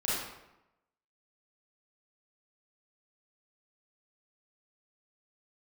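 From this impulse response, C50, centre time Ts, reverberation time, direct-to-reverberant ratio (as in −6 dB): −2.5 dB, 82 ms, 0.90 s, −8.5 dB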